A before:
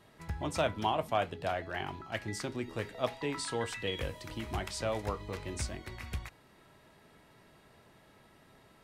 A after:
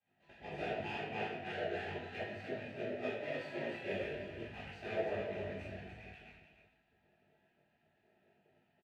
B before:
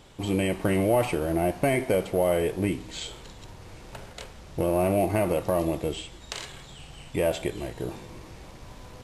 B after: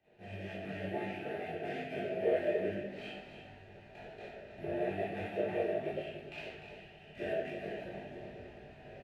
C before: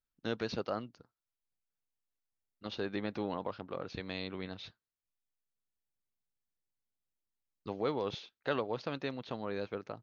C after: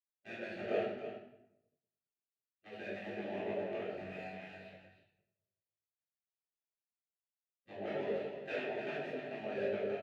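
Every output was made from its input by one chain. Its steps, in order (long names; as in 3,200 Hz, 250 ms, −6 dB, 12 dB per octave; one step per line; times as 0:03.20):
running median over 25 samples
downward compressor 16 to 1, threshold −33 dBFS
formant filter e
on a send: single-tap delay 301 ms −7.5 dB
on the sum: rectangular room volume 480 cubic metres, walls mixed, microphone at 3.7 metres
gate on every frequency bin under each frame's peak −10 dB weak
parametric band 300 Hz −8.5 dB 0.27 octaves
double-tracking delay 20 ms −6 dB
multiband upward and downward expander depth 40%
level +9 dB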